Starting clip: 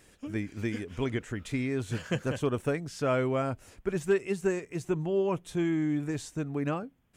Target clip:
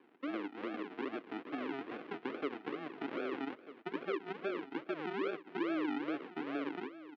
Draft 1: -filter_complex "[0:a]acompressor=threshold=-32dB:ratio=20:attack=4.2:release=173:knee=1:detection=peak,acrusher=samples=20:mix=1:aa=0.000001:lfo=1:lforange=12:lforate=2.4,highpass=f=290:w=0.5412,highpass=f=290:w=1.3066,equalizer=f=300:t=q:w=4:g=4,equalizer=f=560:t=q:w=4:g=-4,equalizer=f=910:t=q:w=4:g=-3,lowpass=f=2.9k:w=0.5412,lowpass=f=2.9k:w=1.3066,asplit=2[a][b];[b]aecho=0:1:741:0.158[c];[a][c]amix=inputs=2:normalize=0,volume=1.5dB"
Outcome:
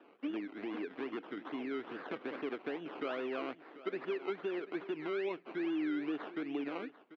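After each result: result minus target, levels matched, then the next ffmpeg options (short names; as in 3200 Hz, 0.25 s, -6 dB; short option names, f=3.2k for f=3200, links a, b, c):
decimation with a swept rate: distortion -13 dB; echo 0.503 s early
-filter_complex "[0:a]acompressor=threshold=-32dB:ratio=20:attack=4.2:release=173:knee=1:detection=peak,acrusher=samples=63:mix=1:aa=0.000001:lfo=1:lforange=37.8:lforate=2.4,highpass=f=290:w=0.5412,highpass=f=290:w=1.3066,equalizer=f=300:t=q:w=4:g=4,equalizer=f=560:t=q:w=4:g=-4,equalizer=f=910:t=q:w=4:g=-3,lowpass=f=2.9k:w=0.5412,lowpass=f=2.9k:w=1.3066,asplit=2[a][b];[b]aecho=0:1:741:0.158[c];[a][c]amix=inputs=2:normalize=0,volume=1.5dB"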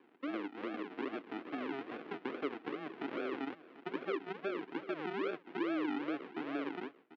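echo 0.503 s early
-filter_complex "[0:a]acompressor=threshold=-32dB:ratio=20:attack=4.2:release=173:knee=1:detection=peak,acrusher=samples=63:mix=1:aa=0.000001:lfo=1:lforange=37.8:lforate=2.4,highpass=f=290:w=0.5412,highpass=f=290:w=1.3066,equalizer=f=300:t=q:w=4:g=4,equalizer=f=560:t=q:w=4:g=-4,equalizer=f=910:t=q:w=4:g=-3,lowpass=f=2.9k:w=0.5412,lowpass=f=2.9k:w=1.3066,asplit=2[a][b];[b]aecho=0:1:1244:0.158[c];[a][c]amix=inputs=2:normalize=0,volume=1.5dB"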